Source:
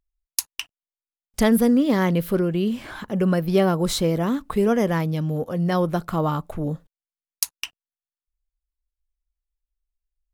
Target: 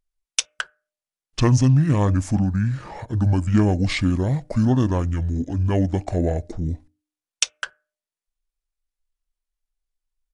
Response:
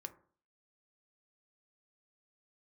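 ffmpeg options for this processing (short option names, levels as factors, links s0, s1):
-filter_complex "[0:a]asetrate=24046,aresample=44100,atempo=1.83401,bandreject=f=303.3:t=h:w=4,bandreject=f=606.6:t=h:w=4,asplit=2[s0][s1];[1:a]atrim=start_sample=2205,asetrate=61740,aresample=44100[s2];[s1][s2]afir=irnorm=-1:irlink=0,volume=0.473[s3];[s0][s3]amix=inputs=2:normalize=0"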